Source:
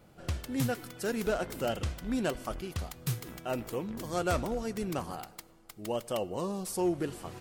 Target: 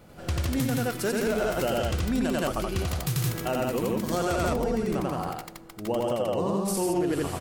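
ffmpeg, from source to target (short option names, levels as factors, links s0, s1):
-filter_complex "[0:a]asettb=1/sr,asplit=3[s0][s1][s2];[s0]atrim=end=4.474[s3];[s1]atrim=start=4.47:end=6.68,asetpts=PTS-STARTPTS,afade=t=in:d=0.004:c=qsin,afade=t=out:st=2.206:d=0.004:c=qsin,highshelf=f=2800:g=-8.5[s4];[s2]atrim=start=6.676[s5];[s3][s4]acrossfade=d=0.004:c1=hsin:c2=qsin[s6];[s6][s5]acrossfade=d=0.004:c1=qsin:c2=hsin,aecho=1:1:90.38|169.1:1|0.891,alimiter=level_in=1.06:limit=0.0631:level=0:latency=1:release=129,volume=0.944,volume=2.11"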